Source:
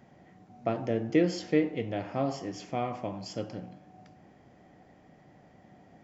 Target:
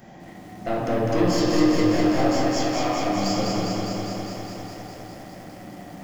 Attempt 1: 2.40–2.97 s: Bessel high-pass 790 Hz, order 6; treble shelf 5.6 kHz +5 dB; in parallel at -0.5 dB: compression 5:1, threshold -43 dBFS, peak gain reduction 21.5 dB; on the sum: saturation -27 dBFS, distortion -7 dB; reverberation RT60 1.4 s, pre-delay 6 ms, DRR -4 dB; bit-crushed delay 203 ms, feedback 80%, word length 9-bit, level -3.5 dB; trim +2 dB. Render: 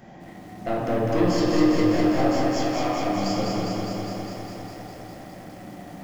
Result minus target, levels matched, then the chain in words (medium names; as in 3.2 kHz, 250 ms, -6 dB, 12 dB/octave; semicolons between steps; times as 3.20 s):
compression: peak gain reduction +5.5 dB; 8 kHz band -4.0 dB
2.40–2.97 s: Bessel high-pass 790 Hz, order 6; treble shelf 5.6 kHz +13 dB; in parallel at -0.5 dB: compression 5:1, threshold -36 dBFS, peak gain reduction 16 dB; on the sum: saturation -27 dBFS, distortion -6 dB; reverberation RT60 1.4 s, pre-delay 6 ms, DRR -4 dB; bit-crushed delay 203 ms, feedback 80%, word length 9-bit, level -3.5 dB; trim +2 dB